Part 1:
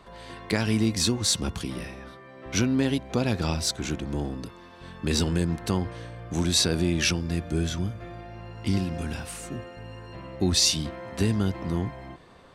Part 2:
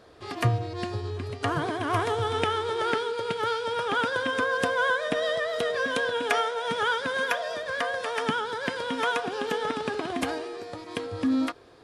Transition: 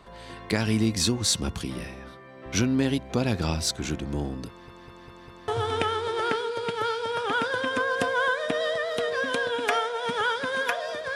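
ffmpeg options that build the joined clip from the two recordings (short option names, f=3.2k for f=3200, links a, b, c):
-filter_complex "[0:a]apad=whole_dur=11.15,atrim=end=11.15,asplit=5[a][b][c][d][e];[a]atrim=end=4.682[f];[b]atrim=start=4.478:end=4.682[g];[c]atrim=start=4.478:end=4.682[h];[d]atrim=start=4.478:end=4.682[i];[e]atrim=start=4.478:end=4.682[j];[1:a]atrim=start=2.098:end=7.77[k];[f][g]acrossfade=d=0.004:c1=hsin:c2=hsin[l];[l][h]acrossfade=d=0.004:c1=hsin:c2=hsin[m];[m][i]acrossfade=d=0.004:c1=hsin:c2=hsin[n];[n][j]acrossfade=d=0.004:c1=hsin:c2=hsin[o];[o][k]acrossfade=d=0.004:c1=hsin:c2=hsin"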